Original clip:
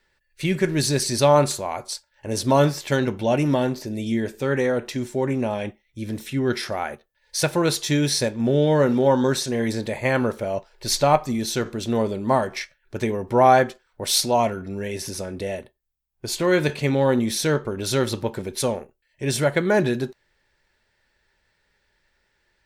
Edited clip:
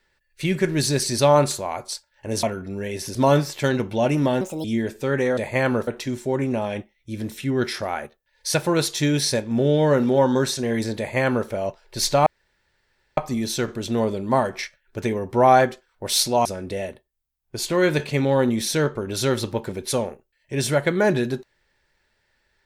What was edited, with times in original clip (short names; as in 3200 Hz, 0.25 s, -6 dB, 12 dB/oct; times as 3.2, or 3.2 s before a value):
3.69–4.03 speed 146%
9.87–10.37 copy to 4.76
11.15 insert room tone 0.91 s
14.43–15.15 move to 2.43